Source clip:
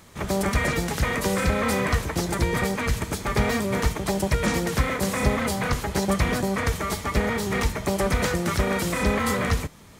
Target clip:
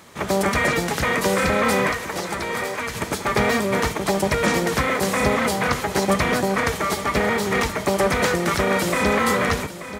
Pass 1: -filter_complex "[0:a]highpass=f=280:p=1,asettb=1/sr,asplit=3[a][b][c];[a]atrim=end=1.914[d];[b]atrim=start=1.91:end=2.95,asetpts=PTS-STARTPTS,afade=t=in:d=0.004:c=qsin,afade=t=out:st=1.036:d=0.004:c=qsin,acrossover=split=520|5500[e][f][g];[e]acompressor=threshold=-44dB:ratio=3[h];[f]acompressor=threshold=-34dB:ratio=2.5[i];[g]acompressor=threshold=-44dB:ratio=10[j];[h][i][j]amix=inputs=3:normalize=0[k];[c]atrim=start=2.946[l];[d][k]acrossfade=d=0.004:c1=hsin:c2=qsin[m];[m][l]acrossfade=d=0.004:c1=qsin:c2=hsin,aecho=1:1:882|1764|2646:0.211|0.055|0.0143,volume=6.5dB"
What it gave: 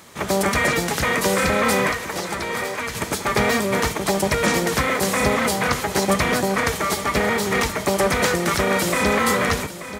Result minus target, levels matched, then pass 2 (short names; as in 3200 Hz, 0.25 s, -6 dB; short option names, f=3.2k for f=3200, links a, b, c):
8000 Hz band +3.0 dB
-filter_complex "[0:a]highpass=f=280:p=1,highshelf=f=4k:g=-4.5,asettb=1/sr,asplit=3[a][b][c];[a]atrim=end=1.914[d];[b]atrim=start=1.91:end=2.95,asetpts=PTS-STARTPTS,afade=t=in:d=0.004:c=qsin,afade=t=out:st=1.036:d=0.004:c=qsin,acrossover=split=520|5500[e][f][g];[e]acompressor=threshold=-44dB:ratio=3[h];[f]acompressor=threshold=-34dB:ratio=2.5[i];[g]acompressor=threshold=-44dB:ratio=10[j];[h][i][j]amix=inputs=3:normalize=0[k];[c]atrim=start=2.946[l];[d][k]acrossfade=d=0.004:c1=hsin:c2=qsin[m];[m][l]acrossfade=d=0.004:c1=qsin:c2=hsin,aecho=1:1:882|1764|2646:0.211|0.055|0.0143,volume=6.5dB"